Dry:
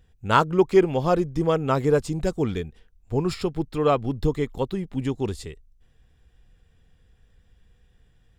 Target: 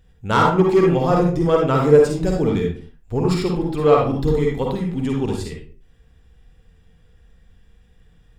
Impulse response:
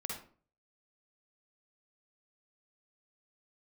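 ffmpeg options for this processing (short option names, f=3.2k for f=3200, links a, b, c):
-filter_complex "[0:a]asoftclip=type=tanh:threshold=-11dB[a];[1:a]atrim=start_sample=2205,afade=t=out:st=0.39:d=0.01,atrim=end_sample=17640[b];[a][b]afir=irnorm=-1:irlink=0,volume=5.5dB"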